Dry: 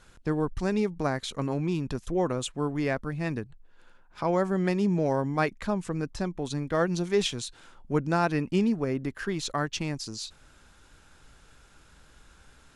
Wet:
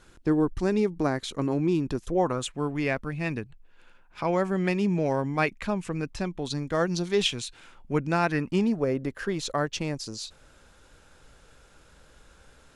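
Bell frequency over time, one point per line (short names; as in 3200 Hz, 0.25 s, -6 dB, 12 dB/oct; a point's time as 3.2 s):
bell +7.5 dB 0.59 oct
2.01 s 330 Hz
2.55 s 2500 Hz
6.27 s 2500 Hz
6.74 s 7700 Hz
7.35 s 2400 Hz
8.21 s 2400 Hz
8.82 s 520 Hz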